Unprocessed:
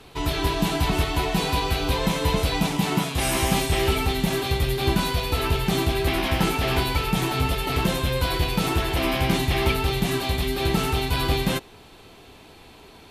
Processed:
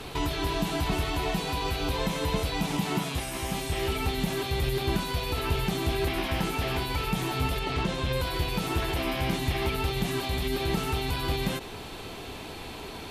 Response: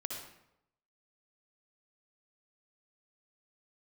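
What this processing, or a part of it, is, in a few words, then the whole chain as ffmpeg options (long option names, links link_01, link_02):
de-esser from a sidechain: -filter_complex "[0:a]asplit=2[link_01][link_02];[link_02]highpass=frequency=6800:poles=1,apad=whole_len=578127[link_03];[link_01][link_03]sidechaincompress=threshold=-46dB:ratio=16:attack=1.6:release=38,asettb=1/sr,asplit=3[link_04][link_05][link_06];[link_04]atrim=end=7.594[link_07];[link_05]atrim=start=7.59:end=8.13,asetpts=PTS-STARTPTS,afade=type=in:duration=0.004:curve=qsin,afade=type=out:start_time=0.536:duration=0.004:curve=qsin,lowpass=6700[link_08];[link_06]atrim=start=8.126[link_09];[link_07][link_08]acrossfade=duration=0.004:curve1=hsin:curve2=qsin[link_10];[link_10][link_09]acrossfade=duration=0.004:curve1=qsin:curve2=hsin,volume=8dB"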